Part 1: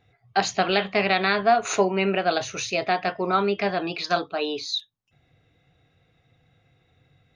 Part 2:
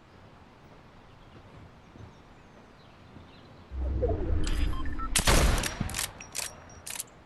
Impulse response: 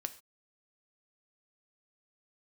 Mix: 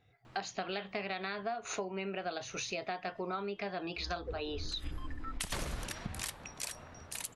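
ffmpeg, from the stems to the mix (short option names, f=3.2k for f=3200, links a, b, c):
-filter_complex "[0:a]volume=-6dB,asplit=2[a][b];[1:a]bandreject=f=50:t=h:w=6,bandreject=f=100:t=h:w=6,adelay=250,volume=-4dB,asplit=2[c][d];[d]volume=-15.5dB[e];[b]apad=whole_len=331076[f];[c][f]sidechaincompress=threshold=-45dB:ratio=4:attack=16:release=114[g];[2:a]atrim=start_sample=2205[h];[e][h]afir=irnorm=-1:irlink=0[i];[a][g][i]amix=inputs=3:normalize=0,acompressor=threshold=-35dB:ratio=6"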